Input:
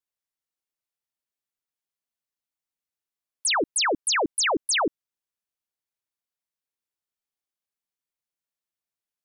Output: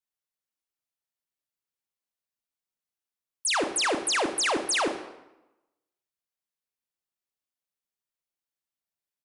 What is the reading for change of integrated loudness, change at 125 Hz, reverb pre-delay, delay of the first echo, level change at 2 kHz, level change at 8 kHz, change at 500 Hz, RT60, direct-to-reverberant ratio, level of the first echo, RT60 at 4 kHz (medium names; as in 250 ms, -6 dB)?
-2.0 dB, -2.0 dB, 25 ms, 75 ms, -2.0 dB, -2.5 dB, -2.0 dB, 0.95 s, 6.5 dB, -12.0 dB, 0.75 s